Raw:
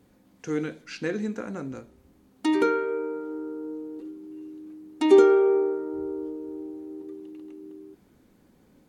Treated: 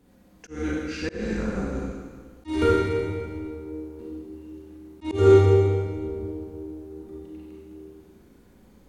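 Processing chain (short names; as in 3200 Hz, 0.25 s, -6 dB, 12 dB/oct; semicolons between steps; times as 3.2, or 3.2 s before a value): octaver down 2 oct, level -2 dB; Schroeder reverb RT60 1.6 s, combs from 32 ms, DRR -5 dB; auto swell 0.215 s; gain -2 dB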